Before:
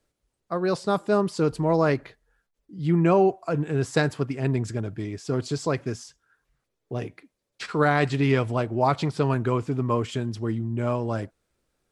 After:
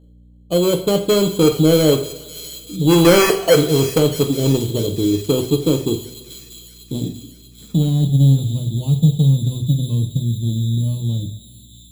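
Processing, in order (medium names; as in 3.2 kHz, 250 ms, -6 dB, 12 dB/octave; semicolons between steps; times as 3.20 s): 2.81–3.61 s: high-order bell 880 Hz +12.5 dB 2.9 oct; in parallel at -2 dB: compression, threshold -27 dBFS, peak gain reduction 21 dB; on the sum: low-pass sweep 460 Hz -> 160 Hz, 5.00–8.55 s; sample-and-hold 12×; saturation -12.5 dBFS, distortion -4 dB; hum 60 Hz, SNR 30 dB; on a send: feedback echo behind a high-pass 638 ms, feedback 60%, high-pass 3.9 kHz, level -7 dB; on the sum: two-slope reverb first 0.45 s, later 2 s, from -18 dB, DRR 4 dB; trim +3.5 dB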